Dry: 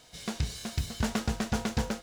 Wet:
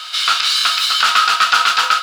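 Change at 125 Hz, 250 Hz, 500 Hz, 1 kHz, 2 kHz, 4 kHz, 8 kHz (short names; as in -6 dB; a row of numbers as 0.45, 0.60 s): under -25 dB, under -15 dB, +1.0 dB, +25.5 dB, +24.0 dB, +27.0 dB, +16.5 dB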